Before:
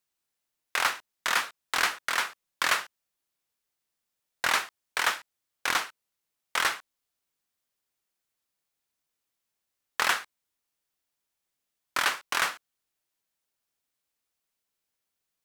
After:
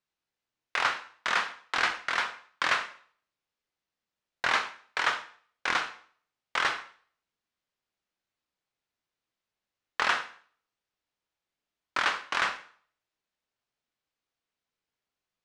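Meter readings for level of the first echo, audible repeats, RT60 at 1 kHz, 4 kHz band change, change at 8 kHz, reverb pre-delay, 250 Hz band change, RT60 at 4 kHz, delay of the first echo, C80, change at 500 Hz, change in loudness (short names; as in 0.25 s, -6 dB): none, none, 0.50 s, -2.5 dB, -9.5 dB, 7 ms, +0.5 dB, 0.45 s, none, 16.0 dB, +0.5 dB, -1.0 dB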